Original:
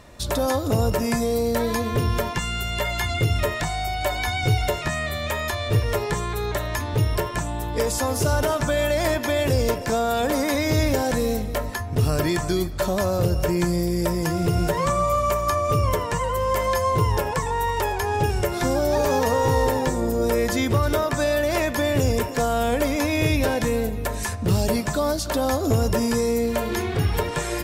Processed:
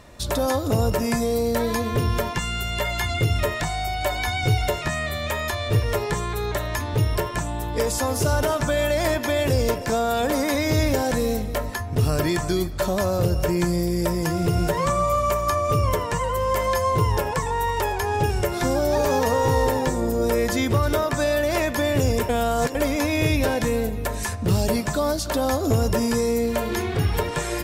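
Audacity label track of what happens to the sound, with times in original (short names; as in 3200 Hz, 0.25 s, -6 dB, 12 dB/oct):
22.290000	22.750000	reverse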